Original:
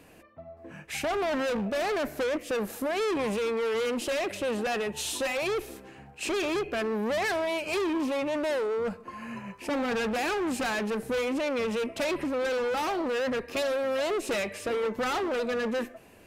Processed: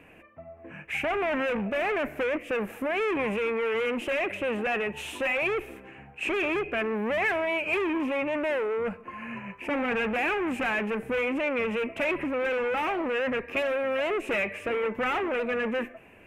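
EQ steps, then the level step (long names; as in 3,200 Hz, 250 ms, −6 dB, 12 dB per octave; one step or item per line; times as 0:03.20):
high shelf with overshoot 3,300 Hz −10 dB, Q 3
0.0 dB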